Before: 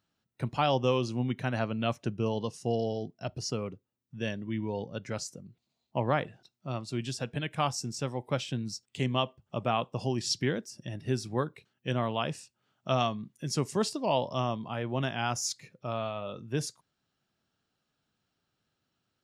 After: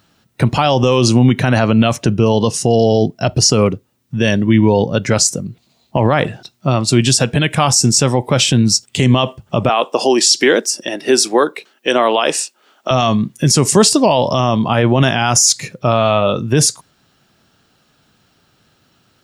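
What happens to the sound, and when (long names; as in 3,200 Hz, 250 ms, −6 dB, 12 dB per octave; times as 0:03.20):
0:09.69–0:12.91: high-pass filter 310 Hz 24 dB per octave
whole clip: dynamic equaliser 8,300 Hz, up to +8 dB, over −54 dBFS, Q 0.94; boost into a limiter +24.5 dB; level −1 dB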